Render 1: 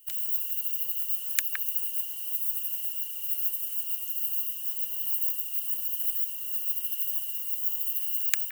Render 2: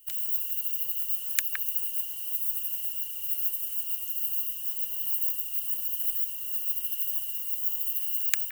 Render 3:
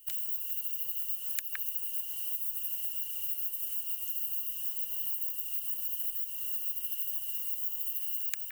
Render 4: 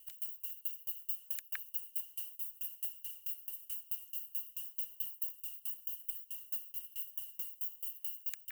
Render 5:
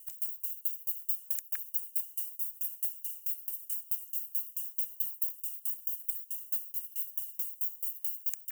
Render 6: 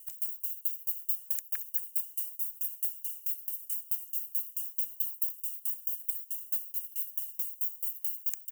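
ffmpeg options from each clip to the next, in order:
-af "lowshelf=f=110:t=q:w=1.5:g=13.5"
-af "acompressor=threshold=-30dB:ratio=6"
-af "aeval=exprs='val(0)*pow(10,-28*if(lt(mod(4.6*n/s,1),2*abs(4.6)/1000),1-mod(4.6*n/s,1)/(2*abs(4.6)/1000),(mod(4.6*n/s,1)-2*abs(4.6)/1000)/(1-2*abs(4.6)/1000))/20)':c=same"
-af "highshelf=f=5k:t=q:w=1.5:g=9,volume=-3dB"
-af "aecho=1:1:226:0.188,volume=1dB"

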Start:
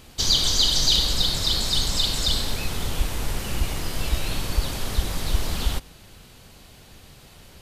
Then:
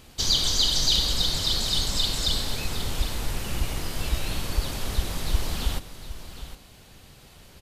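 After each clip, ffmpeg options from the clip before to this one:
-af "aecho=1:1:761:0.237,volume=-2.5dB"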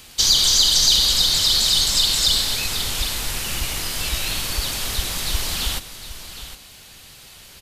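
-filter_complex "[0:a]tiltshelf=f=1.2k:g=-6.5,acrossover=split=280|1800|5500[a][b][c][d];[c]alimiter=limit=-17dB:level=0:latency=1[e];[a][b][e][d]amix=inputs=4:normalize=0,volume=5dB"

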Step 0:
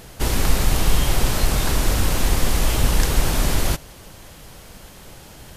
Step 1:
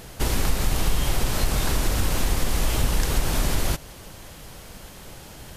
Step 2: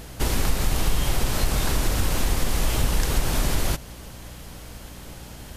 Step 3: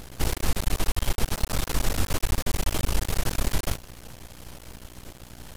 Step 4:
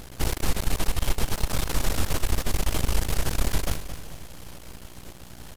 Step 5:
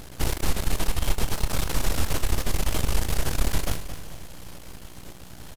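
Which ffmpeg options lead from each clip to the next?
-af "acompressor=threshold=-20dB:ratio=2"
-af "aeval=exprs='val(0)+0.00794*(sin(2*PI*60*n/s)+sin(2*PI*2*60*n/s)/2+sin(2*PI*3*60*n/s)/3+sin(2*PI*4*60*n/s)/4+sin(2*PI*5*60*n/s)/5)':c=same"
-af "aeval=exprs='max(val(0),0)':c=same"
-af "aecho=1:1:222|444|666|888|1110:0.266|0.122|0.0563|0.0259|0.0119"
-filter_complex "[0:a]asplit=2[a][b];[b]adelay=27,volume=-12dB[c];[a][c]amix=inputs=2:normalize=0"

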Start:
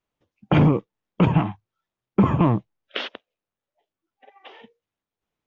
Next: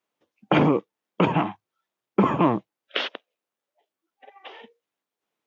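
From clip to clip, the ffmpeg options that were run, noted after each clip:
-af "highpass=270,volume=2.5dB"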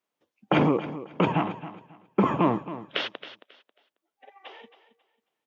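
-af "aecho=1:1:271|542|813:0.2|0.0479|0.0115,volume=-2.5dB"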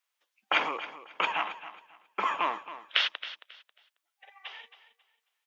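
-af "highpass=1.4k,volume=5dB"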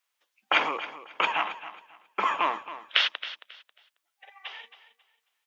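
-af "bandreject=f=60:t=h:w=6,bandreject=f=120:t=h:w=6,bandreject=f=180:t=h:w=6,bandreject=f=240:t=h:w=6,volume=3dB"

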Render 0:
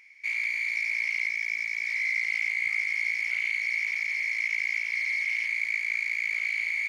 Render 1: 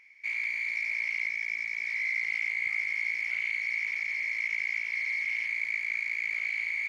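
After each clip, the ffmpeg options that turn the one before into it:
-af "highshelf=f=3.3k:g=-8.5"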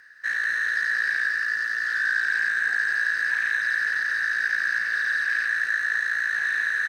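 -filter_complex "[0:a]aemphasis=mode=production:type=cd,afreqshift=-500,asplit=2[a][b];[b]adelay=221.6,volume=-6dB,highshelf=f=4k:g=-4.99[c];[a][c]amix=inputs=2:normalize=0,volume=5dB"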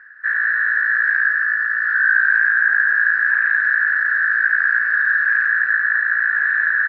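-af "lowpass=f=1.5k:t=q:w=3.6"

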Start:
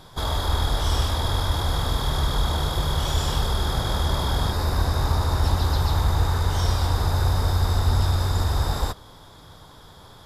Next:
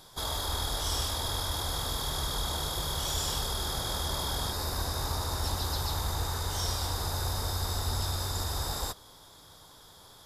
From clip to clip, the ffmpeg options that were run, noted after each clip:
-af "bass=f=250:g=-5,treble=f=4k:g=10,volume=-7.5dB"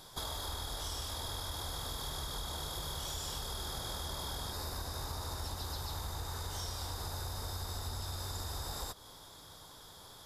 -af "acompressor=threshold=-37dB:ratio=6"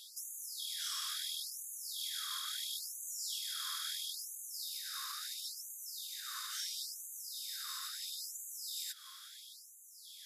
-af "afftfilt=real='re*gte(b*sr/1024,1000*pow(6200/1000,0.5+0.5*sin(2*PI*0.74*pts/sr)))':imag='im*gte(b*sr/1024,1000*pow(6200/1000,0.5+0.5*sin(2*PI*0.74*pts/sr)))':win_size=1024:overlap=0.75,volume=3dB"

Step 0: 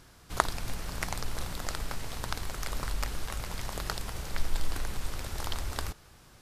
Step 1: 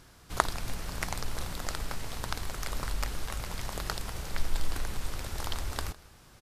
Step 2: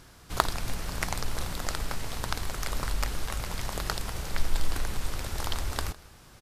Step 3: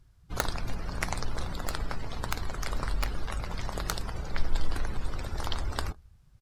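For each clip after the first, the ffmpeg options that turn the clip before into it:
-af "aecho=1:1:157:0.075"
-af "aeval=exprs='0.501*(abs(mod(val(0)/0.501+3,4)-2)-1)':c=same,volume=3dB"
-af "aeval=exprs='(mod(2.99*val(0)+1,2)-1)/2.99':c=same,afftdn=nr=21:nf=-42"

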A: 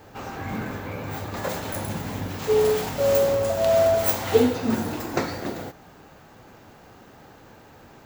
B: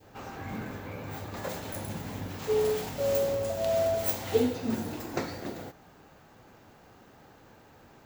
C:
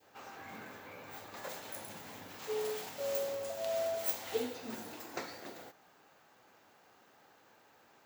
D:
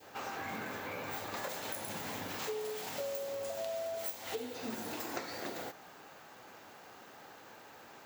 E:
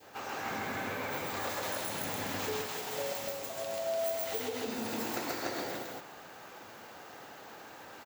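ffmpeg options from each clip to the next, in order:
-af "adynamicequalizer=threshold=0.0126:dfrequency=1200:dqfactor=1.1:tfrequency=1200:tqfactor=1.1:attack=5:release=100:ratio=0.375:range=2.5:mode=cutabove:tftype=bell,volume=-6.5dB"
-af "highpass=f=730:p=1,volume=-4.5dB"
-af "acompressor=threshold=-46dB:ratio=12,volume=10dB"
-af "aecho=1:1:134.1|291.5:1|0.891"

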